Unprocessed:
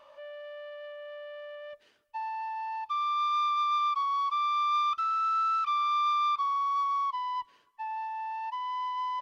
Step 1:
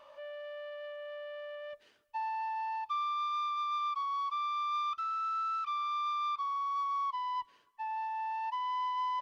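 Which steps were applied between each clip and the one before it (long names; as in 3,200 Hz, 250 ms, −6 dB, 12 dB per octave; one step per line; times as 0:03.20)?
speech leveller within 4 dB 0.5 s
level −4.5 dB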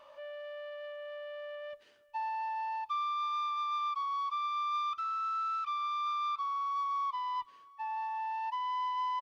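single-tap delay 1,077 ms −23.5 dB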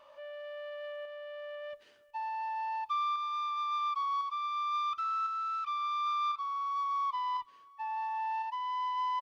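shaped tremolo saw up 0.95 Hz, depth 40%
level +2.5 dB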